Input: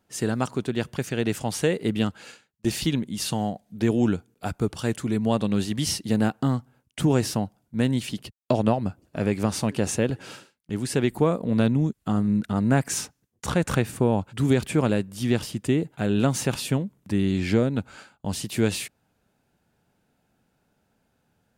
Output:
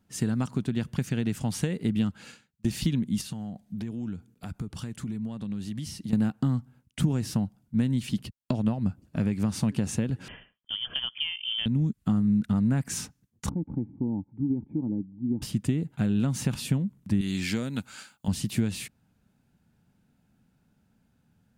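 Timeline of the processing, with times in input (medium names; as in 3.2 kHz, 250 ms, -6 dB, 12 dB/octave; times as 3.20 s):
3.21–6.13 s: compression 5:1, threshold -35 dBFS
10.28–11.66 s: frequency inversion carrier 3.3 kHz
13.49–15.42 s: cascade formant filter u
17.21–18.28 s: tilt EQ +3.5 dB/octave
whole clip: peaking EQ 660 Hz -2.5 dB; compression, threshold -25 dBFS; resonant low shelf 290 Hz +7 dB, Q 1.5; trim -3 dB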